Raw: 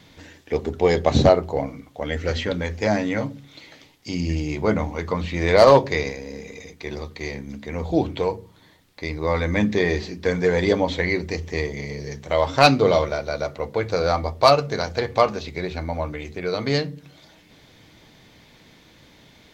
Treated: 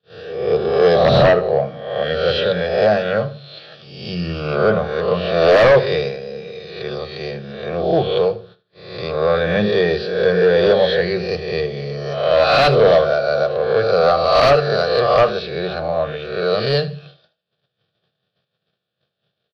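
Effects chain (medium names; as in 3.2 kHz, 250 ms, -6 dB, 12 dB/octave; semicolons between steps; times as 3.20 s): reverse spectral sustain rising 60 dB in 0.90 s; gate -44 dBFS, range -34 dB; high-pass 120 Hz 24 dB/octave; peaking EQ 5.7 kHz +13 dB 0.88 oct; static phaser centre 1.4 kHz, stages 8; in parallel at -10 dB: sine folder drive 16 dB, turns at 4 dBFS; on the sum: distance through air 300 m; on a send: feedback delay 78 ms, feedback 30%, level -16.5 dB; on the sum: trim -3.5 dB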